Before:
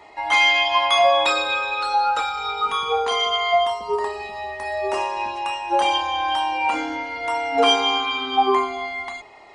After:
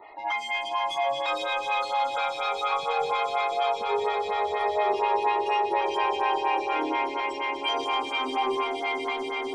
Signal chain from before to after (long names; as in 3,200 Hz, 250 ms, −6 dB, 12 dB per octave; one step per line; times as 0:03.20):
0:02.71–0:03.53: low-pass filter 3,400 Hz → 1,800 Hz 24 dB per octave
gate on every frequency bin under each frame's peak −25 dB strong
0:07.20–0:07.69: Butterworth high-pass 2,000 Hz
brickwall limiter −17 dBFS, peak gain reduction 10.5 dB
soft clipping −18.5 dBFS, distortion −21 dB
echo that builds up and dies away 123 ms, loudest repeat 8, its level −11 dB
phaser with staggered stages 4.2 Hz